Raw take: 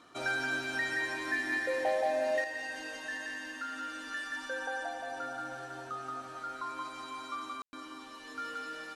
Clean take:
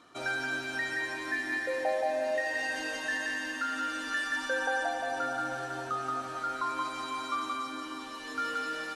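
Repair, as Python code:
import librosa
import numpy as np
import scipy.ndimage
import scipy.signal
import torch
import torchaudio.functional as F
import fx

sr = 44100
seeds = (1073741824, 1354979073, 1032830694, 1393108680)

y = fx.fix_declip(x, sr, threshold_db=-23.5)
y = fx.fix_ambience(y, sr, seeds[0], print_start_s=5.41, print_end_s=5.91, start_s=7.62, end_s=7.73)
y = fx.fix_level(y, sr, at_s=2.44, step_db=6.5)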